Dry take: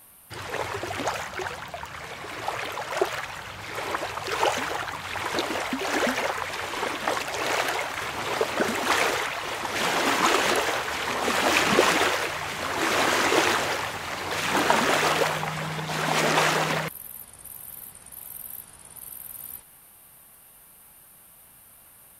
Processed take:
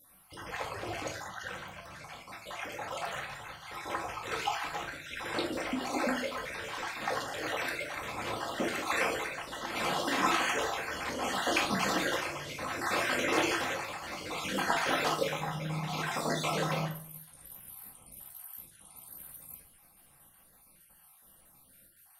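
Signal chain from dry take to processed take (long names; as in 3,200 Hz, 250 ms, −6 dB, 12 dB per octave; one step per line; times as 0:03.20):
time-frequency cells dropped at random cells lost 43%
rectangular room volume 450 cubic metres, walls furnished, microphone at 2.1 metres
level −8.5 dB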